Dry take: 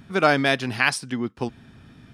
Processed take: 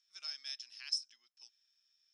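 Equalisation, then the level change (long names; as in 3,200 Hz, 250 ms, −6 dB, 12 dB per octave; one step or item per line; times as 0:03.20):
four-pole ladder band-pass 5,400 Hz, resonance 90%
high-frequency loss of the air 59 metres
parametric band 4,700 Hz −10 dB 0.35 octaves
−1.0 dB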